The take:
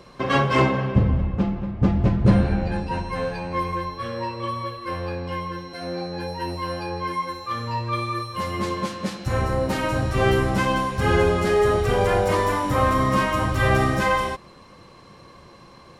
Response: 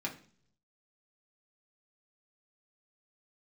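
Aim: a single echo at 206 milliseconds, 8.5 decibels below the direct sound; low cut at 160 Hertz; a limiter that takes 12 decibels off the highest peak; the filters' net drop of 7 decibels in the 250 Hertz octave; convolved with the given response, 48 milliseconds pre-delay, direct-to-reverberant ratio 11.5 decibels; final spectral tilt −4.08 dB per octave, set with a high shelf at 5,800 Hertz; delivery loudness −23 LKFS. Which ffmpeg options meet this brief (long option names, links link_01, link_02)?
-filter_complex "[0:a]highpass=160,equalizer=frequency=250:width_type=o:gain=-8.5,highshelf=frequency=5800:gain=-5,alimiter=limit=-19.5dB:level=0:latency=1,aecho=1:1:206:0.376,asplit=2[link_01][link_02];[1:a]atrim=start_sample=2205,adelay=48[link_03];[link_02][link_03]afir=irnorm=-1:irlink=0,volume=-14dB[link_04];[link_01][link_04]amix=inputs=2:normalize=0,volume=5.5dB"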